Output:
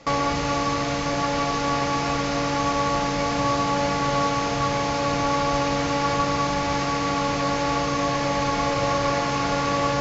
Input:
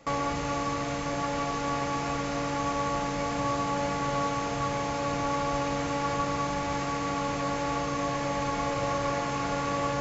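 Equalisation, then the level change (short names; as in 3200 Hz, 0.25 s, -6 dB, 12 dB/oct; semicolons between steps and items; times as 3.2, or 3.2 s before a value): synth low-pass 5300 Hz, resonance Q 1.6; +6.0 dB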